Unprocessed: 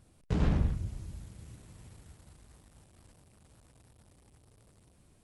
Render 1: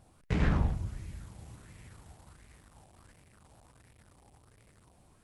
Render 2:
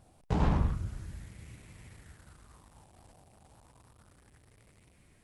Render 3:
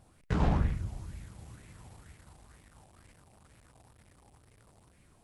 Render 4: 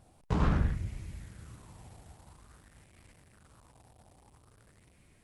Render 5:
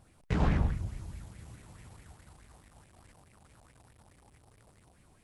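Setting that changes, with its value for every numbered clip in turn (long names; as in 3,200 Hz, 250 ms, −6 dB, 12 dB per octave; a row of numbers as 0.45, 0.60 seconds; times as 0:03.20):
auto-filter bell, speed: 1.4, 0.31, 2.1, 0.5, 4.7 Hertz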